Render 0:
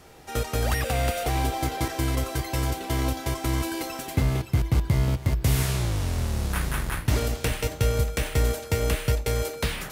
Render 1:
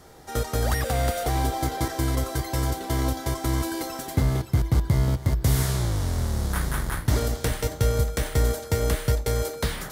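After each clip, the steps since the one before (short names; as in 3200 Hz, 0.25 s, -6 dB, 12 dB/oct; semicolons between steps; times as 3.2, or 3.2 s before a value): bell 2600 Hz -10 dB 0.41 oct; gain +1 dB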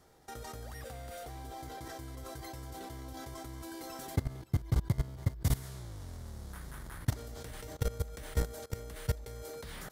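level quantiser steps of 19 dB; crackle 67/s -58 dBFS; gain -6 dB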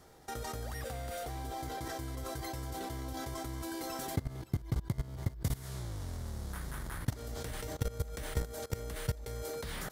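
compressor 6:1, threshold -34 dBFS, peak gain reduction 11 dB; gain +4.5 dB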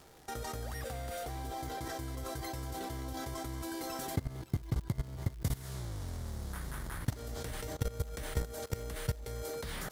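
crackle 140/s -45 dBFS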